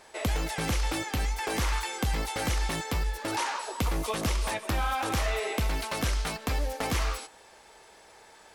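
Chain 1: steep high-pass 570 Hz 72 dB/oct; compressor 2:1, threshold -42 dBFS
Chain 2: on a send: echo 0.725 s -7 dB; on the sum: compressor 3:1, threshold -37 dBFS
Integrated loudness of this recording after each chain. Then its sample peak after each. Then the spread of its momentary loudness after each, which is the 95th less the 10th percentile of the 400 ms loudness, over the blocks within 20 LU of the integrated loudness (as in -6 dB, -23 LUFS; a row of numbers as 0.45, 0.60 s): -39.5, -38.0 LUFS; -24.0, -24.0 dBFS; 15, 3 LU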